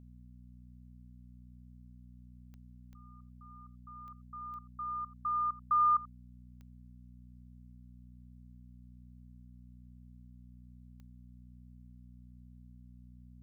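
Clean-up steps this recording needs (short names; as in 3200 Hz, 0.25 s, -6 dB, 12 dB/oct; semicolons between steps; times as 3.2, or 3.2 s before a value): de-click; de-hum 61.2 Hz, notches 4; inverse comb 86 ms -19 dB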